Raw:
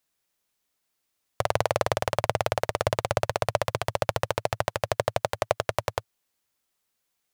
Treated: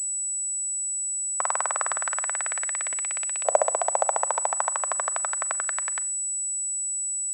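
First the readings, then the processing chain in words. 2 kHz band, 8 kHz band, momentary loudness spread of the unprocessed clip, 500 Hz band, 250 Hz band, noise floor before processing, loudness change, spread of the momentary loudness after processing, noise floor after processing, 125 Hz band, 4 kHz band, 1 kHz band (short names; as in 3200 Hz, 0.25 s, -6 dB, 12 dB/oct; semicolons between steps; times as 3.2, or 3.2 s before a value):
-0.5 dB, +20.5 dB, 3 LU, -3.5 dB, under -15 dB, -79 dBFS, +3.5 dB, 3 LU, -29 dBFS, under -30 dB, -10.5 dB, +0.5 dB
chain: bell 3100 Hz -10.5 dB 1.4 oct; Schroeder reverb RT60 0.51 s, combs from 30 ms, DRR 19.5 dB; LFO high-pass saw up 0.29 Hz 590–2700 Hz; pulse-width modulation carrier 7900 Hz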